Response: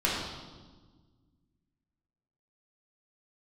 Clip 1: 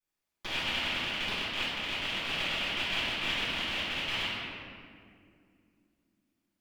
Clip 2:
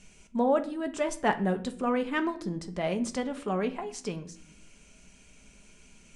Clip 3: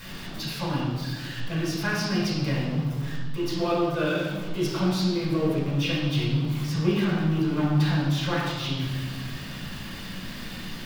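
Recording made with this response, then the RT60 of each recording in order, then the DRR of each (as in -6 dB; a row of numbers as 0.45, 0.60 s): 3; 2.3, 0.60, 1.4 s; -17.5, 6.5, -5.5 dB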